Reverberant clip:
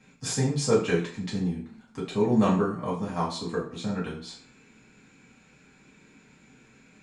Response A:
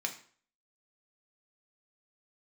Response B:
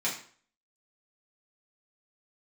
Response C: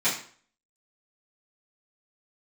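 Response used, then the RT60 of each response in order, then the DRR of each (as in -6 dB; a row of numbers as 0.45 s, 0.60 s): B; 0.50 s, 0.50 s, 0.50 s; 2.5 dB, -7.0 dB, -13.5 dB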